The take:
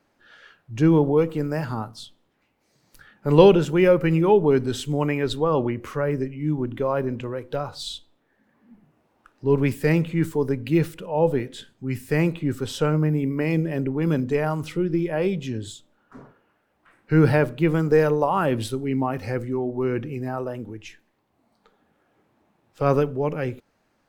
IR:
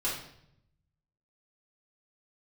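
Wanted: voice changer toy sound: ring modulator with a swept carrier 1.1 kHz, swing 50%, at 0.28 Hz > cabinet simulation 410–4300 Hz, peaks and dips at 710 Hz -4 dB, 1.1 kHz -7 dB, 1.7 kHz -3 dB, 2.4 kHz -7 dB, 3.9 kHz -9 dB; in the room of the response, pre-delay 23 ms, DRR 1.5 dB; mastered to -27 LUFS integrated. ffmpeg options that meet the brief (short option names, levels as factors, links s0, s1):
-filter_complex "[0:a]asplit=2[s0][s1];[1:a]atrim=start_sample=2205,adelay=23[s2];[s1][s2]afir=irnorm=-1:irlink=0,volume=0.398[s3];[s0][s3]amix=inputs=2:normalize=0,aeval=exprs='val(0)*sin(2*PI*1100*n/s+1100*0.5/0.28*sin(2*PI*0.28*n/s))':c=same,highpass=410,equalizer=f=710:t=q:w=4:g=-4,equalizer=f=1100:t=q:w=4:g=-7,equalizer=f=1700:t=q:w=4:g=-3,equalizer=f=2400:t=q:w=4:g=-7,equalizer=f=3900:t=q:w=4:g=-9,lowpass=f=4300:w=0.5412,lowpass=f=4300:w=1.3066,volume=0.841"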